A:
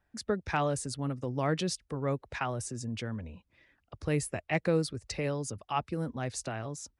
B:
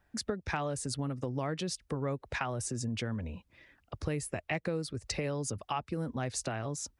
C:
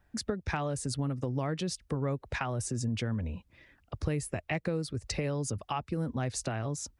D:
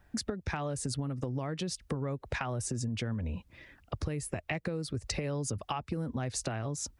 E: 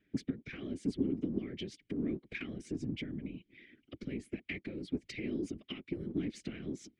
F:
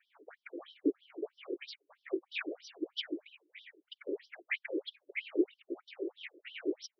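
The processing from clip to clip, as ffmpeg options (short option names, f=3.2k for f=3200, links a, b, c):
-af "acompressor=threshold=-36dB:ratio=6,volume=5dB"
-af "lowshelf=f=210:g=5.5"
-af "acompressor=threshold=-36dB:ratio=6,volume=5dB"
-filter_complex "[0:a]aeval=exprs='0.133*(cos(1*acos(clip(val(0)/0.133,-1,1)))-cos(1*PI/2))+0.0119*(cos(4*acos(clip(val(0)/0.133,-1,1)))-cos(4*PI/2))':c=same,asplit=3[a][b][c];[a]bandpass=f=270:t=q:w=8,volume=0dB[d];[b]bandpass=f=2.29k:t=q:w=8,volume=-6dB[e];[c]bandpass=f=3.01k:t=q:w=8,volume=-9dB[f];[d][e][f]amix=inputs=3:normalize=0,afftfilt=real='hypot(re,im)*cos(2*PI*random(0))':imag='hypot(re,im)*sin(2*PI*random(1))':win_size=512:overlap=0.75,volume=13.5dB"
-af "afftfilt=real='re*between(b*sr/1024,400*pow(4300/400,0.5+0.5*sin(2*PI*3.1*pts/sr))/1.41,400*pow(4300/400,0.5+0.5*sin(2*PI*3.1*pts/sr))*1.41)':imag='im*between(b*sr/1024,400*pow(4300/400,0.5+0.5*sin(2*PI*3.1*pts/sr))/1.41,400*pow(4300/400,0.5+0.5*sin(2*PI*3.1*pts/sr))*1.41)':win_size=1024:overlap=0.75,volume=11.5dB"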